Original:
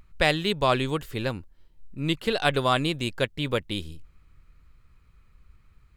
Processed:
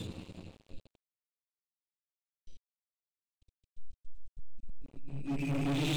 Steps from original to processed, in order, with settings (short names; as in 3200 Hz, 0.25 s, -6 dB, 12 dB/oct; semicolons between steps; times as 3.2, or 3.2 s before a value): steep low-pass 9000 Hz 72 dB/oct; high shelf 2400 Hz +10 dB; Schroeder reverb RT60 0.58 s, combs from 26 ms, DRR 19 dB; Paulstretch 9.5×, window 0.25 s, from 1.39; band shelf 1200 Hz -15.5 dB; de-hum 66.24 Hz, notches 39; spectral noise reduction 15 dB; sample leveller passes 5; crossover distortion -52.5 dBFS; gain -7 dB